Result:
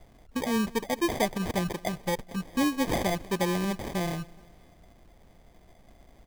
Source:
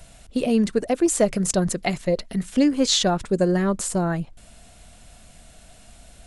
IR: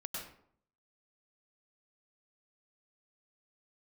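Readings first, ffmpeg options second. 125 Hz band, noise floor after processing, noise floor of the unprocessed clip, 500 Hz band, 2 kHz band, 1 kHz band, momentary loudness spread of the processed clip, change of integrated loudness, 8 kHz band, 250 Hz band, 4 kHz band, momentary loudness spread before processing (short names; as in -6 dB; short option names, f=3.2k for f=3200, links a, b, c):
-7.0 dB, -57 dBFS, -49 dBFS, -8.5 dB, -1.5 dB, -2.5 dB, 6 LU, -7.5 dB, -12.5 dB, -7.5 dB, -9.5 dB, 7 LU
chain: -af "acrusher=samples=32:mix=1:aa=0.000001,aecho=1:1:210|420|630:0.0708|0.0361|0.0184,volume=-7.5dB"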